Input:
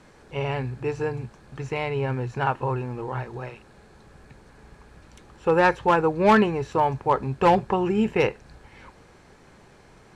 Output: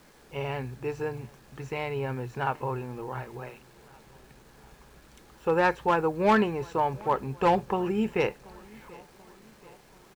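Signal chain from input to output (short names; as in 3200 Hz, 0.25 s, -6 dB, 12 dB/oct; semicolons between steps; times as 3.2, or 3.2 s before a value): bell 94 Hz -13.5 dB 0.38 oct; bit-crush 9-bit; feedback echo 0.734 s, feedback 56%, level -24 dB; gain -4.5 dB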